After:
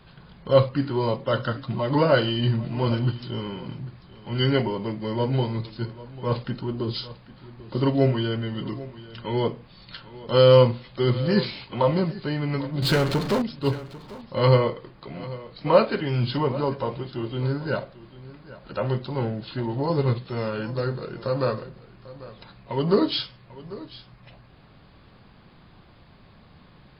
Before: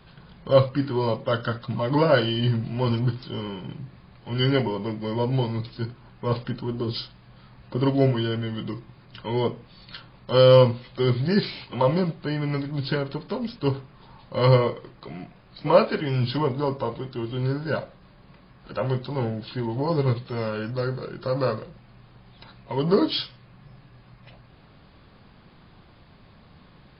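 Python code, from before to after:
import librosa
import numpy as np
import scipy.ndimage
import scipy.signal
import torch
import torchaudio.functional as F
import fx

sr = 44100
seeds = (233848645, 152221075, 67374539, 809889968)

p1 = fx.power_curve(x, sr, exponent=0.5, at=(12.82, 13.42))
y = p1 + fx.echo_single(p1, sr, ms=794, db=-17.5, dry=0)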